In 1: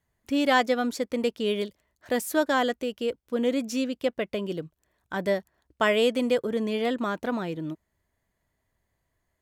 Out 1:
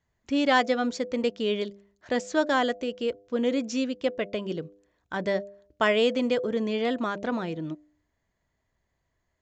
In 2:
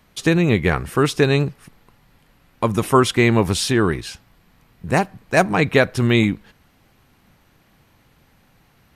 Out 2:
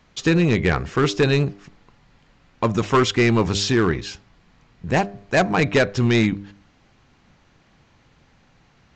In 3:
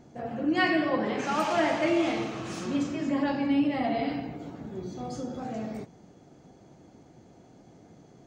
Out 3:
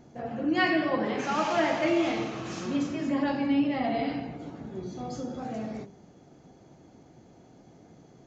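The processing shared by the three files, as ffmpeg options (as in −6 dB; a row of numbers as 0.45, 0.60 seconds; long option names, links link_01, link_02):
-af "bandreject=frequency=100.1:width_type=h:width=4,bandreject=frequency=200.2:width_type=h:width=4,bandreject=frequency=300.3:width_type=h:width=4,bandreject=frequency=400.4:width_type=h:width=4,bandreject=frequency=500.5:width_type=h:width=4,bandreject=frequency=600.6:width_type=h:width=4,bandreject=frequency=700.7:width_type=h:width=4,aresample=16000,asoftclip=type=hard:threshold=-11dB,aresample=44100"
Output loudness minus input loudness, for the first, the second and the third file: −0.5, −1.5, 0.0 LU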